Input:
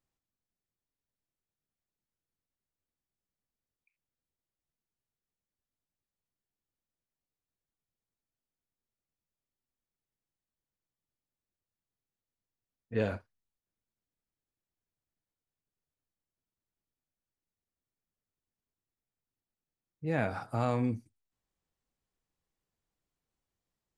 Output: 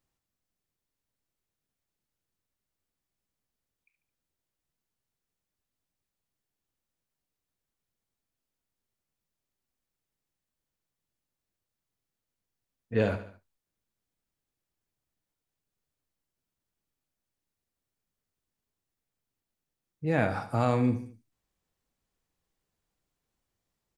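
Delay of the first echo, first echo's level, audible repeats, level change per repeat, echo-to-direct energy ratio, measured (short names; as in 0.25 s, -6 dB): 72 ms, -13.0 dB, 3, -6.0 dB, -12.0 dB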